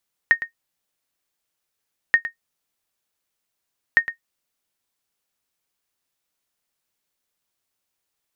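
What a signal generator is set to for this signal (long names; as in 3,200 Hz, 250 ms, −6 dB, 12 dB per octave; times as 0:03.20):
ping with an echo 1,850 Hz, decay 0.11 s, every 1.83 s, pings 3, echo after 0.11 s, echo −13 dB −5 dBFS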